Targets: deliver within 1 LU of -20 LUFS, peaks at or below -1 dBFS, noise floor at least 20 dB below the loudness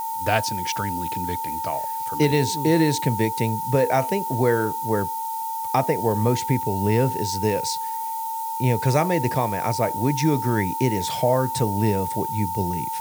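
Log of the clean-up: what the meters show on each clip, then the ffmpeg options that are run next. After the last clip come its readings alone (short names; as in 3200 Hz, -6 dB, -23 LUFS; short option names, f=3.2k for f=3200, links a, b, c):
steady tone 900 Hz; tone level -26 dBFS; noise floor -29 dBFS; noise floor target -43 dBFS; loudness -23.0 LUFS; peak -4.5 dBFS; loudness target -20.0 LUFS
-> -af "bandreject=f=900:w=30"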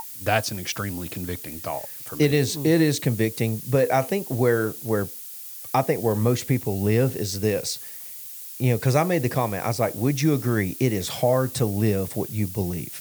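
steady tone none; noise floor -38 dBFS; noise floor target -44 dBFS
-> -af "afftdn=nr=6:nf=-38"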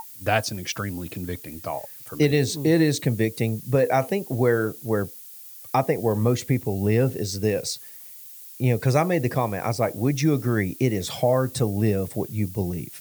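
noise floor -43 dBFS; noise floor target -44 dBFS
-> -af "afftdn=nr=6:nf=-43"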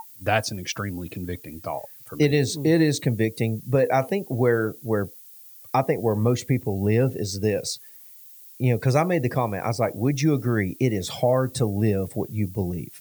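noise floor -47 dBFS; loudness -24.0 LUFS; peak -5.5 dBFS; loudness target -20.0 LUFS
-> -af "volume=4dB"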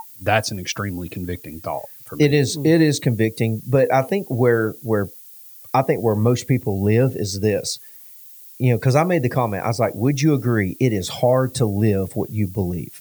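loudness -20.0 LUFS; peak -1.5 dBFS; noise floor -43 dBFS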